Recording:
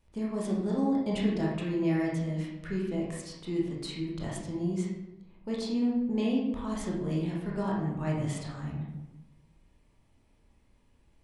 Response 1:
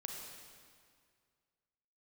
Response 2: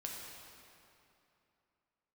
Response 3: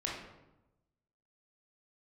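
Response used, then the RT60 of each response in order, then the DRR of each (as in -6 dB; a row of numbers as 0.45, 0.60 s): 3; 2.1, 2.8, 0.95 s; 0.5, -2.0, -4.0 dB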